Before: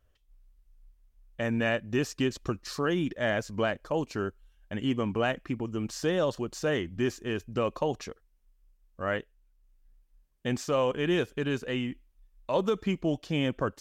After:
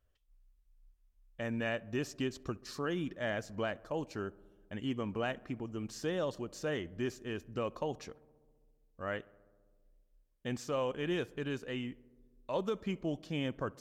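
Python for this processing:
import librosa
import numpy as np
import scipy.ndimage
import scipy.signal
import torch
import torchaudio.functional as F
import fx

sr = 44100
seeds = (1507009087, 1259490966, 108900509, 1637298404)

y = fx.echo_filtered(x, sr, ms=66, feedback_pct=81, hz=1900.0, wet_db=-23.5)
y = F.gain(torch.from_numpy(y), -7.5).numpy()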